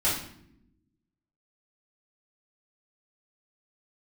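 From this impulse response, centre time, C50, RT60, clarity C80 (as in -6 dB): 42 ms, 3.5 dB, no single decay rate, 8.0 dB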